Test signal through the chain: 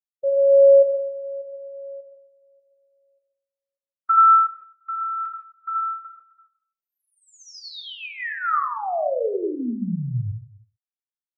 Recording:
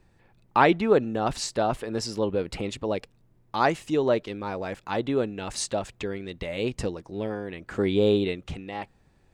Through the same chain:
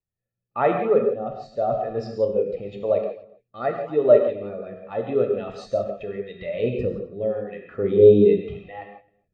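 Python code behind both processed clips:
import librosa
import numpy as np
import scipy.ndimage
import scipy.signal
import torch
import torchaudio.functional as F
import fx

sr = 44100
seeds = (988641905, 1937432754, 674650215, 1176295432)

p1 = scipy.signal.sosfilt(scipy.signal.butter(2, 3600.0, 'lowpass', fs=sr, output='sos'), x)
p2 = fx.low_shelf(p1, sr, hz=97.0, db=-11.5)
p3 = p2 + 0.45 * np.pad(p2, (int(1.6 * sr / 1000.0), 0))[:len(p2)]
p4 = p3 + fx.echo_single(p3, sr, ms=262, db=-15.5, dry=0)
p5 = fx.rider(p4, sr, range_db=4, speed_s=2.0)
p6 = fx.rotary(p5, sr, hz=0.9)
p7 = fx.rev_gated(p6, sr, seeds[0], gate_ms=200, shape='flat', drr_db=1.0)
p8 = fx.spectral_expand(p7, sr, expansion=1.5)
y = p8 * 10.0 ** (6.5 / 20.0)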